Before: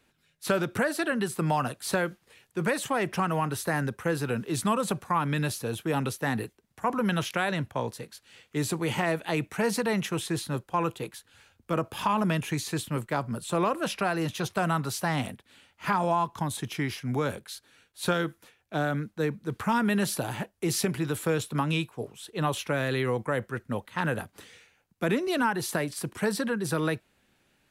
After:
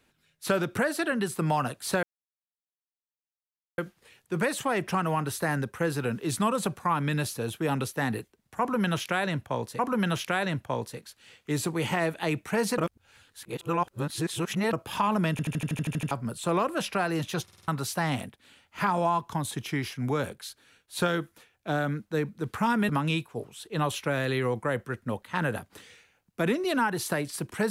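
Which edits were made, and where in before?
2.03 insert silence 1.75 s
6.85–8.04 loop, 2 plays
9.84–11.79 reverse
12.37 stutter in place 0.08 s, 10 plays
14.49 stutter in place 0.05 s, 5 plays
19.95–21.52 cut

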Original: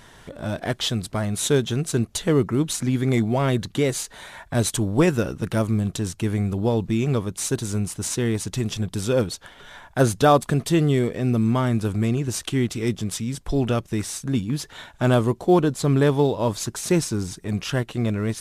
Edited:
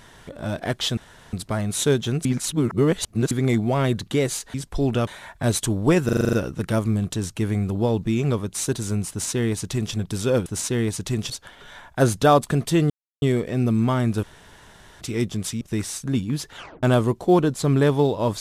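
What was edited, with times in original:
0.97 insert room tone 0.36 s
1.89–2.95 reverse
5.16 stutter 0.04 s, 8 plays
7.93–8.77 copy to 9.29
10.89 insert silence 0.32 s
11.9–12.68 room tone
13.28–13.81 move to 4.18
14.76 tape stop 0.27 s

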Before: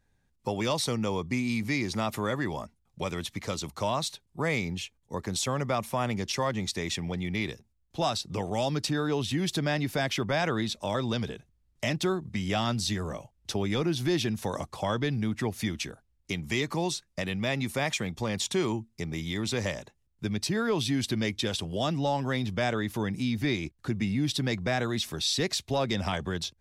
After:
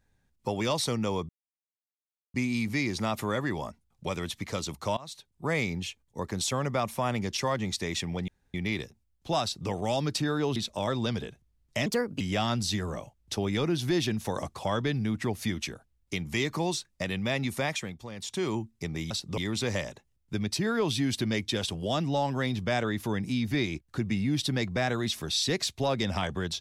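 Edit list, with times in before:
1.29 insert silence 1.05 s
3.92–4.45 fade in, from -22 dB
7.23 insert room tone 0.26 s
8.12–8.39 copy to 19.28
9.25–10.63 cut
11.93–12.38 speed 130%
17.76–18.78 dip -10.5 dB, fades 0.45 s

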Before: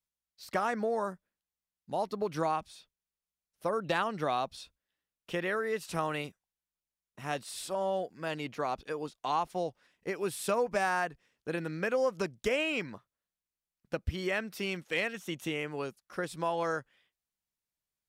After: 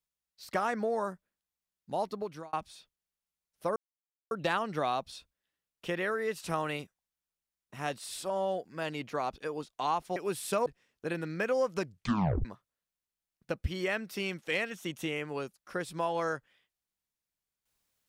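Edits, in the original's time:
2.06–2.53 fade out
3.76 insert silence 0.55 s
9.61–10.12 cut
10.62–11.09 cut
12.26 tape stop 0.62 s

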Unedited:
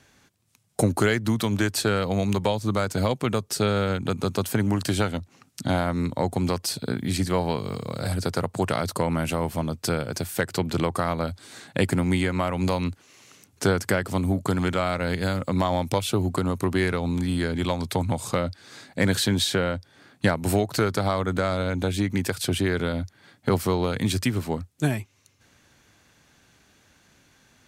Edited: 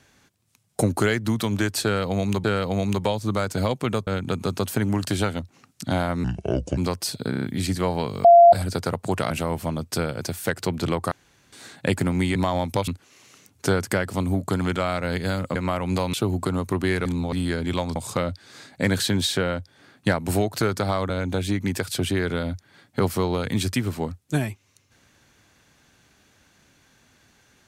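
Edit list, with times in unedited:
1.84–2.44 loop, 2 plays
3.47–3.85 cut
6.02–6.4 speed 71%
6.93 stutter 0.03 s, 5 plays
7.75–8.03 bleep 688 Hz -7 dBFS
8.81–9.22 cut
11.03–11.44 room tone
12.27–12.85 swap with 15.53–16.05
16.97–17.24 reverse
17.87–18.13 cut
21.27–21.59 cut

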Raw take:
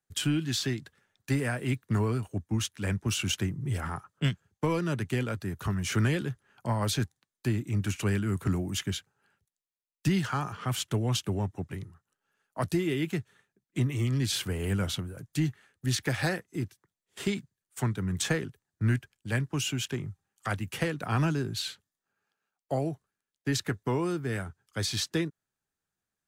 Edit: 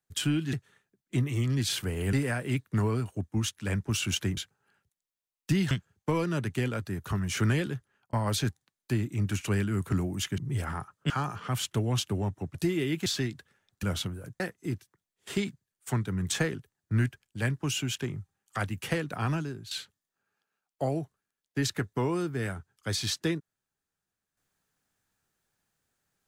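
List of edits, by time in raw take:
0.53–1.3 swap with 13.16–14.76
3.54–4.26 swap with 8.93–10.27
6.09–6.68 fade out equal-power
11.72–12.65 cut
15.33–16.3 cut
20.97–21.61 fade out, to -13 dB

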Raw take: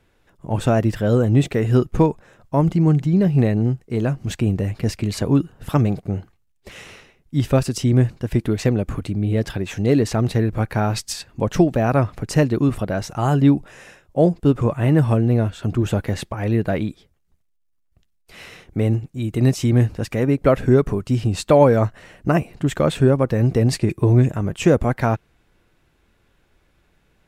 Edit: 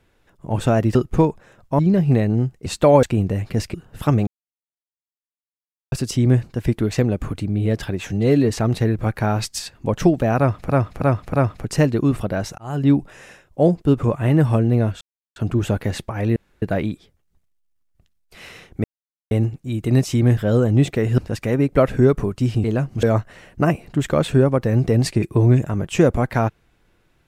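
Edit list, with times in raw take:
0.95–1.76 move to 19.87
2.6–3.06 cut
3.93–4.32 swap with 21.33–21.7
5.03–5.41 cut
5.94–7.59 mute
9.78–10.04 stretch 1.5×
11.91–12.23 loop, 4 plays
13.16–13.53 fade in
15.59 insert silence 0.35 s
16.59 insert room tone 0.26 s
18.81 insert silence 0.47 s

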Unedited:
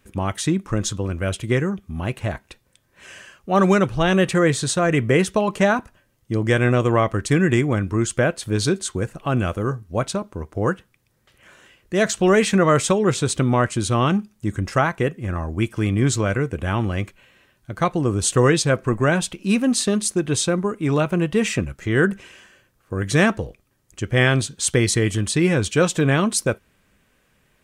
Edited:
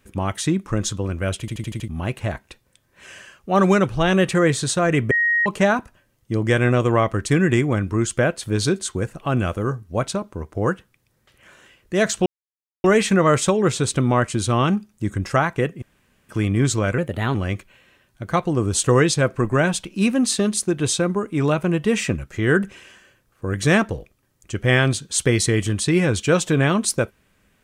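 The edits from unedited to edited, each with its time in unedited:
1.4 stutter in place 0.08 s, 6 plays
5.11–5.46 bleep 1880 Hz -15.5 dBFS
12.26 insert silence 0.58 s
15.24–15.71 room tone
16.4–16.83 speed 117%

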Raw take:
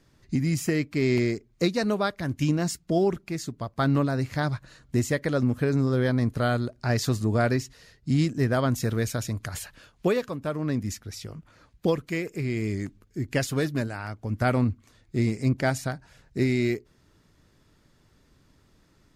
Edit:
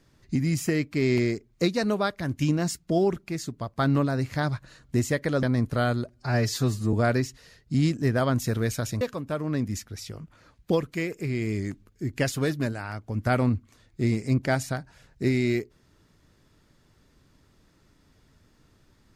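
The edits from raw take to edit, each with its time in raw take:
5.43–6.07 cut
6.73–7.29 stretch 1.5×
9.37–10.16 cut

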